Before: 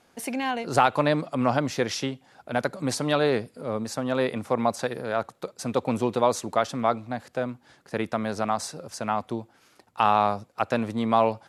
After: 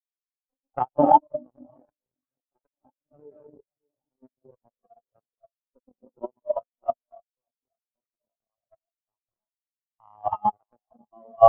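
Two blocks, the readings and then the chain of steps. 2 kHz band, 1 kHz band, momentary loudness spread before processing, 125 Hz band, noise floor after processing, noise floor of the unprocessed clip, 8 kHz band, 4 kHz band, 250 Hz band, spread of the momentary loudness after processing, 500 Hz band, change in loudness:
below −25 dB, 0.0 dB, 11 LU, below −10 dB, below −85 dBFS, −62 dBFS, below −40 dB, below −25 dB, −8.5 dB, 21 LU, −2.0 dB, +1.0 dB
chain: octave-band graphic EQ 125/4,000/8,000 Hz −5/−10/+4 dB
reverb whose tail is shaped and stops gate 340 ms rising, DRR −4.5 dB
harmonic generator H 2 −8 dB, 3 −14 dB, 5 −31 dB, 7 −22 dB, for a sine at −3.5 dBFS
on a send: delay that swaps between a low-pass and a high-pass 580 ms, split 1,300 Hz, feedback 78%, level −14 dB
on the sum: output level in coarse steps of 11 dB
high-frequency loss of the air 68 metres
in parallel at +2 dB: downward compressor, threshold −41 dBFS, peak gain reduction 22 dB
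on the sum: treble cut that deepens with the level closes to 2,500 Hz, closed at −22 dBFS
decimation without filtering 11×
dead-zone distortion −49.5 dBFS
every bin expanded away from the loudest bin 4 to 1
level +3 dB

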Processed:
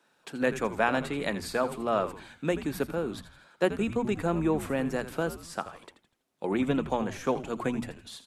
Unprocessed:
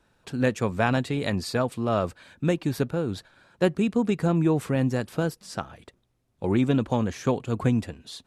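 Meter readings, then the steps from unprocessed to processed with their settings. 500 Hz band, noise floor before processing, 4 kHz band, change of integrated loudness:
−2.5 dB, −69 dBFS, −3.5 dB, −4.0 dB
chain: dynamic equaliser 4,900 Hz, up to −7 dB, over −50 dBFS, Q 0.93
high-pass filter 160 Hz 24 dB per octave
low-shelf EQ 410 Hz −8 dB
mains-hum notches 60/120/180/240 Hz
echo with shifted repeats 82 ms, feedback 44%, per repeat −110 Hz, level −12.5 dB
level +1 dB

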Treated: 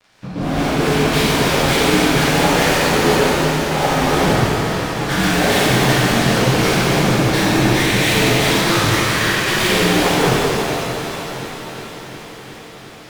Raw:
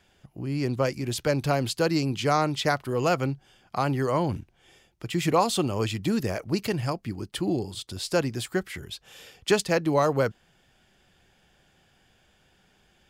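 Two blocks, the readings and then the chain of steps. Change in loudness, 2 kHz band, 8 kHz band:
+11.5 dB, +17.5 dB, +15.0 dB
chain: partials spread apart or drawn together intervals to 76%
fuzz pedal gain 50 dB, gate −59 dBFS
on a send: echo machine with several playback heads 359 ms, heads all three, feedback 61%, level −20.5 dB
on the sum: reverb with rising layers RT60 3.3 s, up +7 semitones, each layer −8 dB, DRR −11 dB
level −12.5 dB

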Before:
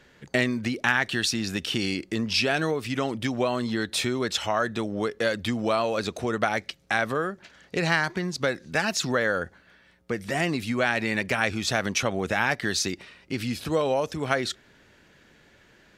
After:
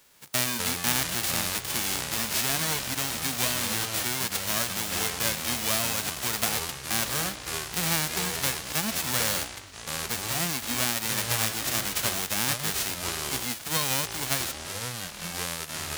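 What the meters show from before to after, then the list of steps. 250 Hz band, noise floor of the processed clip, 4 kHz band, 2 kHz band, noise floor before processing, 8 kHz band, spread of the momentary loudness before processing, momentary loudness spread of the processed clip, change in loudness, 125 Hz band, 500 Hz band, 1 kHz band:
−8.0 dB, −41 dBFS, +2.5 dB, −4.5 dB, −58 dBFS, +9.5 dB, 6 LU, 7 LU, −0.5 dB, −2.5 dB, −10.0 dB, −3.5 dB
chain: spectral envelope flattened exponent 0.1
delay with pitch and tempo change per echo 108 ms, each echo −6 semitones, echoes 3, each echo −6 dB
level −3 dB

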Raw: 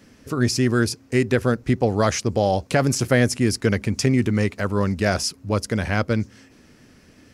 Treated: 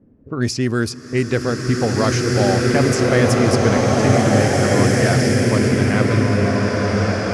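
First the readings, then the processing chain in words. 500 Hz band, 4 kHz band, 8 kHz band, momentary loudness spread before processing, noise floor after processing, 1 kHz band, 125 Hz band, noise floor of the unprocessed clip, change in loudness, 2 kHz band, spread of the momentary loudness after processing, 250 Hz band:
+5.5 dB, +4.0 dB, +3.0 dB, 5 LU, −36 dBFS, +5.5 dB, +6.0 dB, −52 dBFS, +5.0 dB, +5.0 dB, 6 LU, +5.0 dB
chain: low-pass that shuts in the quiet parts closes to 430 Hz, open at −14.5 dBFS
slow-attack reverb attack 1,990 ms, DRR −4.5 dB

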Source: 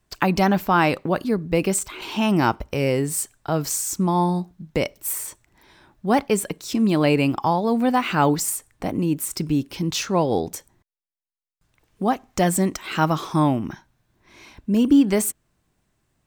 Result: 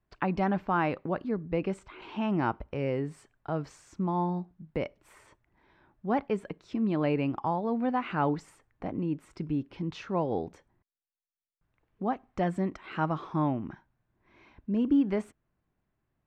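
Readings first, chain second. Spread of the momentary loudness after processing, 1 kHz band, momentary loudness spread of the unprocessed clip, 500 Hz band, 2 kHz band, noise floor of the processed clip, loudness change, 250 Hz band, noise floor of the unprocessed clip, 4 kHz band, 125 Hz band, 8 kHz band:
10 LU, −9.0 dB, 9 LU, −9.0 dB, −11.5 dB, −82 dBFS, −9.5 dB, −9.0 dB, −72 dBFS, −18.0 dB, −9.0 dB, below −30 dB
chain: low-pass filter 2,100 Hz 12 dB per octave
level −9 dB

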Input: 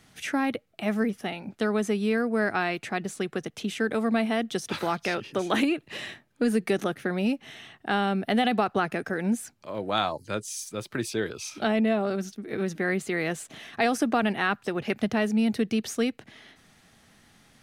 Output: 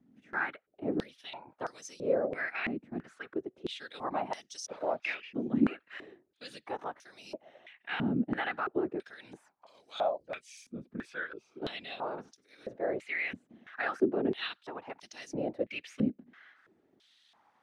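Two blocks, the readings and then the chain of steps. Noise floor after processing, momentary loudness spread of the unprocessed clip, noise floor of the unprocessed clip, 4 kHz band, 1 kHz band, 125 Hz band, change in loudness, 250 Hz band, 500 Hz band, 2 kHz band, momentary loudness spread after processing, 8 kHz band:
−74 dBFS, 9 LU, −62 dBFS, −9.5 dB, −9.0 dB, −9.5 dB, −7.5 dB, −9.0 dB, −7.0 dB, −7.0 dB, 17 LU, −12.5 dB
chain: harmonic and percussive parts rebalanced harmonic +5 dB
random phases in short frames
band-pass on a step sequencer 3 Hz 240–5,700 Hz

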